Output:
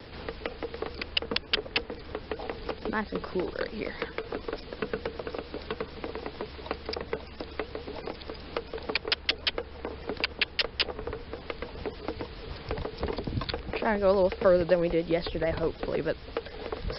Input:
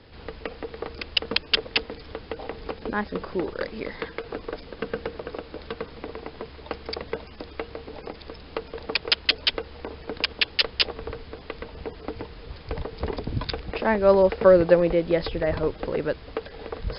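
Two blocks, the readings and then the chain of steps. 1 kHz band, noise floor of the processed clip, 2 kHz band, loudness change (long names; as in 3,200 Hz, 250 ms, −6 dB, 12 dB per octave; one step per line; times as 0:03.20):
−3.5 dB, −45 dBFS, −3.5 dB, −6.0 dB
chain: pitch vibrato 6.8 Hz 89 cents
multiband upward and downward compressor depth 40%
level −2.5 dB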